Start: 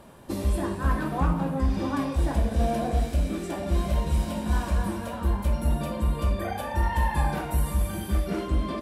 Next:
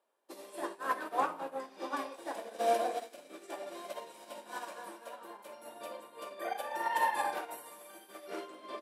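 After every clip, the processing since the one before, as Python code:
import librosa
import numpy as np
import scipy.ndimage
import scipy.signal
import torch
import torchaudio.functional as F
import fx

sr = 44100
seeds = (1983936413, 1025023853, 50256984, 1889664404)

y = scipy.signal.sosfilt(scipy.signal.butter(4, 390.0, 'highpass', fs=sr, output='sos'), x)
y = fx.upward_expand(y, sr, threshold_db=-47.0, expansion=2.5)
y = y * 10.0 ** (2.5 / 20.0)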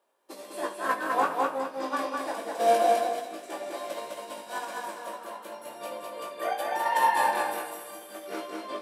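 y = fx.doubler(x, sr, ms=19.0, db=-5)
y = fx.echo_feedback(y, sr, ms=206, feedback_pct=26, wet_db=-3)
y = y * 10.0 ** (5.0 / 20.0)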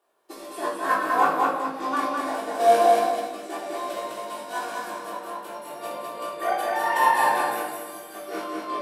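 y = fx.room_shoebox(x, sr, seeds[0], volume_m3=990.0, walls='furnished', distance_m=3.4)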